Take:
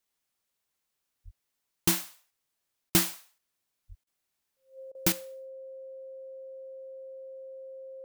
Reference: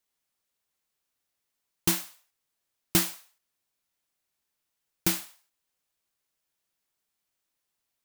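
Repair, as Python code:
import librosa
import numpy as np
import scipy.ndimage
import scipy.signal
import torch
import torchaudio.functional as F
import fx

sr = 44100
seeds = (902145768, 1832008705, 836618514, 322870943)

y = fx.notch(x, sr, hz=530.0, q=30.0)
y = fx.highpass(y, sr, hz=140.0, slope=24, at=(1.24, 1.36), fade=0.02)
y = fx.highpass(y, sr, hz=140.0, slope=24, at=(3.88, 4.0), fade=0.02)
y = fx.fix_interpolate(y, sr, at_s=(2.9, 4.04, 4.92), length_ms=28.0)
y = fx.fix_level(y, sr, at_s=5.12, step_db=10.0)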